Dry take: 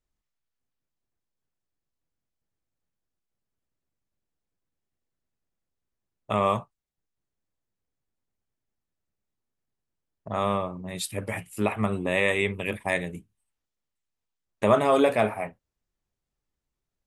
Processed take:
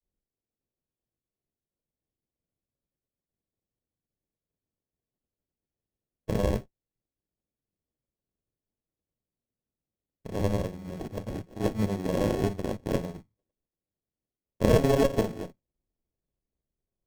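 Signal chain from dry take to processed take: granulator, spray 24 ms; sample-rate reducer 1.1 kHz, jitter 0%; Chebyshev band-stop 620–8100 Hz, order 2; sliding maximum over 17 samples

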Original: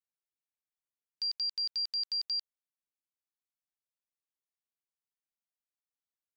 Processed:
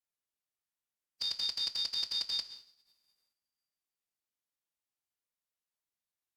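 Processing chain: two-slope reverb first 0.72 s, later 1.8 s, from -19 dB, DRR 7.5 dB; formant-preserving pitch shift -4.5 st

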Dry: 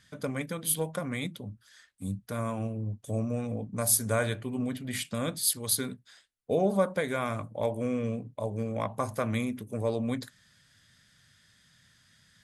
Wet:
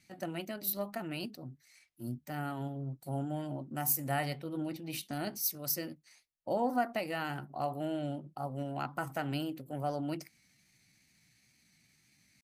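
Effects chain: pitch shift +4 st; wow and flutter 22 cents; trim -5.5 dB

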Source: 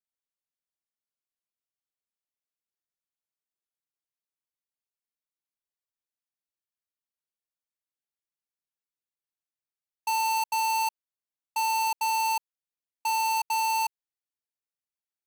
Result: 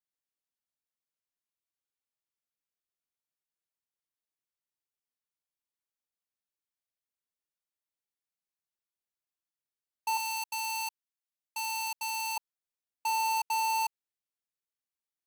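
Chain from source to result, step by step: 10.17–12.37 s: Bessel high-pass 1.5 kHz, order 2; trim -3 dB

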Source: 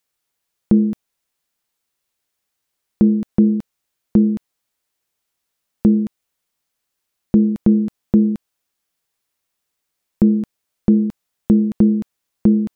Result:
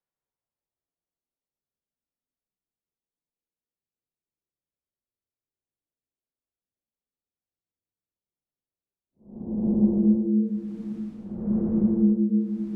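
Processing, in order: level-controlled noise filter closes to 440 Hz, open at -12.5 dBFS; Paulstretch 5.1×, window 0.25 s, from 1.09 s; trim -8.5 dB

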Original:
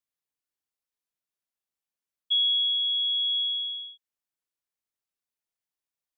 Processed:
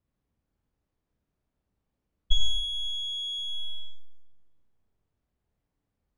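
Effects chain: single-diode clipper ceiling -20 dBFS; tilt EQ -6 dB/octave; 2.36–3.78 s: crackle 10 per s -> 27 per s -58 dBFS; Schroeder reverb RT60 1.3 s, combs from 28 ms, DRR 0.5 dB; trim +8 dB

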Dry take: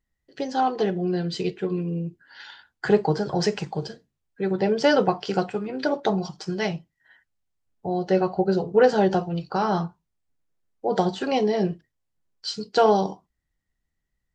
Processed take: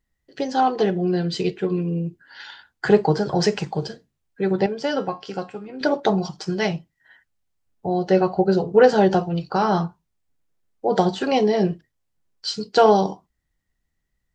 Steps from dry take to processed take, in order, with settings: 4.66–5.81 s: feedback comb 270 Hz, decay 0.3 s, harmonics all, mix 70%; trim +3.5 dB

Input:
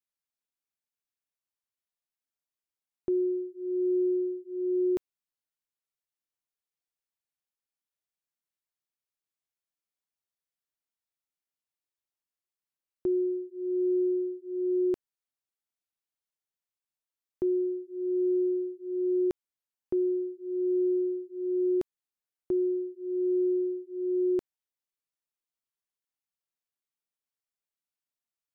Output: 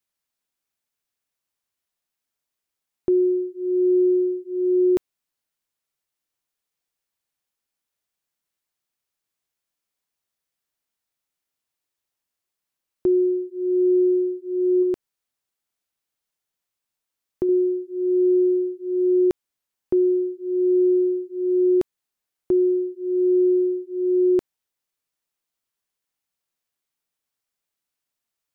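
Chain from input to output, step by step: 14.82–17.49 s: compression, threshold -28 dBFS, peak gain reduction 4 dB; trim +8.5 dB

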